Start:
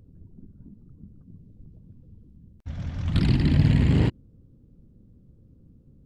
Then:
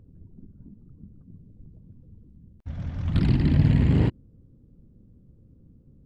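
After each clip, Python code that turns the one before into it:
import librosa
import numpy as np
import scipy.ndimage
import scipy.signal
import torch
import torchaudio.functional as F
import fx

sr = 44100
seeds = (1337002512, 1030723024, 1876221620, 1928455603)

y = fx.high_shelf(x, sr, hz=2800.0, db=-8.5)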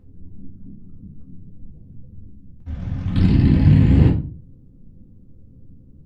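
y = fx.room_shoebox(x, sr, seeds[0], volume_m3=210.0, walls='furnished', distance_m=2.0)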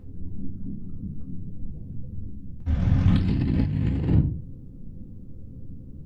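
y = fx.over_compress(x, sr, threshold_db=-21.0, ratio=-1.0)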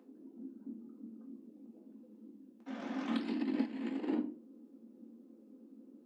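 y = scipy.signal.sosfilt(scipy.signal.cheby1(6, 3, 220.0, 'highpass', fs=sr, output='sos'), x)
y = y * 10.0 ** (-3.5 / 20.0)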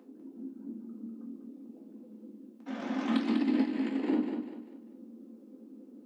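y = fx.echo_feedback(x, sr, ms=197, feedback_pct=36, wet_db=-6.5)
y = y * 10.0 ** (5.0 / 20.0)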